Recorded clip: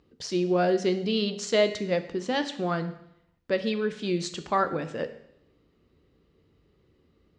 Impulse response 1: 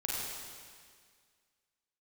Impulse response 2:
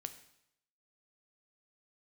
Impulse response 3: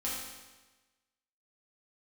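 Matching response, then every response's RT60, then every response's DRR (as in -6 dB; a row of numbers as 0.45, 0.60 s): 2; 1.9, 0.75, 1.2 s; -5.5, 9.0, -7.0 dB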